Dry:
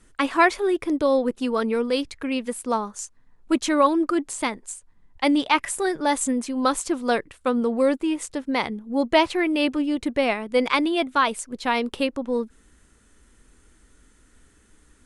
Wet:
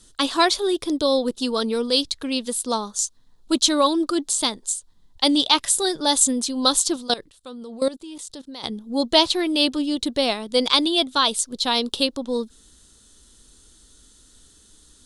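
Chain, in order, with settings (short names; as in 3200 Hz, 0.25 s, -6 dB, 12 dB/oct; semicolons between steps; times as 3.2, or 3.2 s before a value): resonant high shelf 2900 Hz +9 dB, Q 3; 6.96–8.64 level quantiser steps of 18 dB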